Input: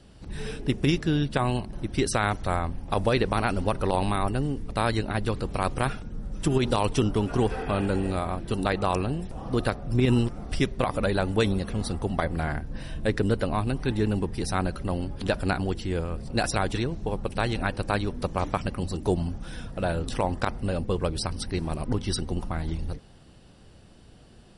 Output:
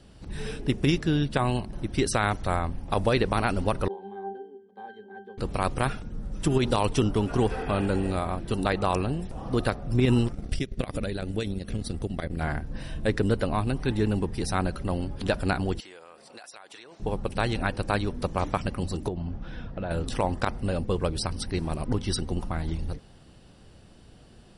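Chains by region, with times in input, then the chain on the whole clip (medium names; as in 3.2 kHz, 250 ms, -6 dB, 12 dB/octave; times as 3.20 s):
3.88–5.38 s: high-pass 280 Hz 24 dB/octave + peaking EQ 420 Hz +4.5 dB 2.3 oct + pitch-class resonator G, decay 0.29 s
10.32–12.41 s: peaking EQ 950 Hz -12.5 dB 1.1 oct + compression 2.5:1, threshold -30 dBFS + transient shaper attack +10 dB, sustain -9 dB
15.80–17.00 s: high-pass 680 Hz + compression 10:1, threshold -42 dBFS
19.08–19.91 s: distance through air 230 m + compression 10:1, threshold -27 dBFS
whole clip: none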